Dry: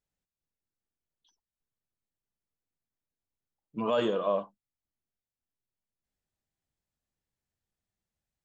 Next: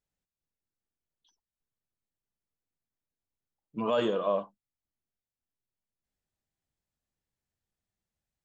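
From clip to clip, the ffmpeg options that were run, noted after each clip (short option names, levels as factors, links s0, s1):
-af anull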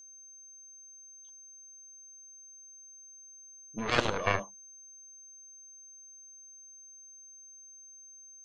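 -af "aeval=exprs='0.141*(cos(1*acos(clip(val(0)/0.141,-1,1)))-cos(1*PI/2))+0.0708*(cos(3*acos(clip(val(0)/0.141,-1,1)))-cos(3*PI/2))+0.01*(cos(4*acos(clip(val(0)/0.141,-1,1)))-cos(4*PI/2))':c=same,aeval=exprs='val(0)+0.00178*sin(2*PI*6300*n/s)':c=same,volume=1.88"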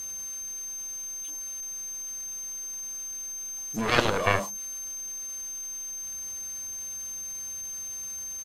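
-af "aeval=exprs='val(0)+0.5*0.015*sgn(val(0))':c=same,aresample=32000,aresample=44100,volume=1.58"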